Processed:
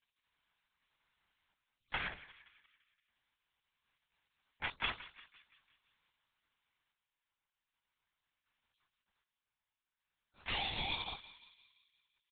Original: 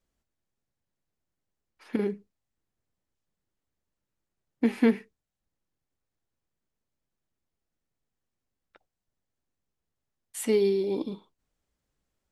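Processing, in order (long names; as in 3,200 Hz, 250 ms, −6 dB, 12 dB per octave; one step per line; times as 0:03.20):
gate on every frequency bin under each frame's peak −30 dB weak
parametric band 430 Hz −8 dB 0.83 octaves
comb filter 6.2 ms, depth 58%
hum removal 68.47 Hz, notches 8
sample-and-hold tremolo 1.3 Hz, depth 80%
feedback echo with a high-pass in the loop 172 ms, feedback 57%, high-pass 1,100 Hz, level −14.5 dB
linear-prediction vocoder at 8 kHz whisper
level +17 dB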